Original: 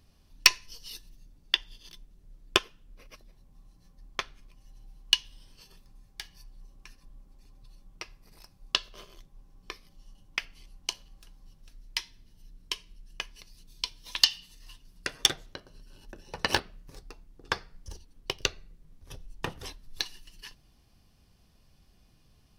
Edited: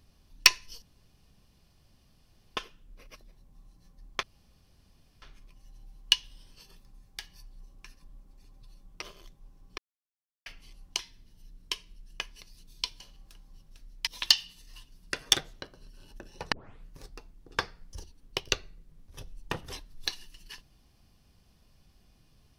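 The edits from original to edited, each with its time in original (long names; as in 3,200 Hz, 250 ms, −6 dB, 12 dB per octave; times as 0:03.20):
0:00.82–0:02.57: fill with room tone
0:04.23: splice in room tone 0.99 s
0:08.03–0:08.95: remove
0:09.71–0:10.39: silence
0:10.92–0:11.99: move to 0:14.00
0:16.45: tape start 0.33 s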